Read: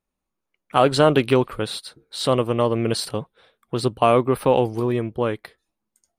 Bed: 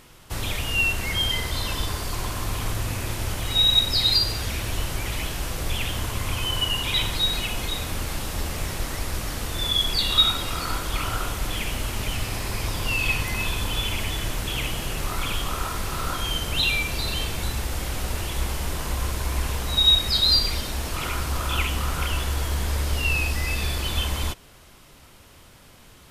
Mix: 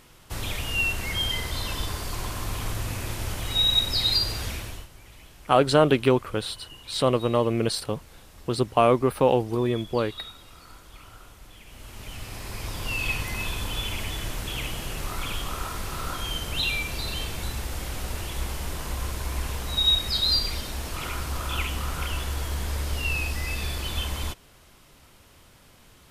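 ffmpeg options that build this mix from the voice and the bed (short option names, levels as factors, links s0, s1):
-filter_complex "[0:a]adelay=4750,volume=0.75[s0];[1:a]volume=4.73,afade=t=out:st=4.46:d=0.42:silence=0.133352,afade=t=in:st=11.65:d=1.37:silence=0.149624[s1];[s0][s1]amix=inputs=2:normalize=0"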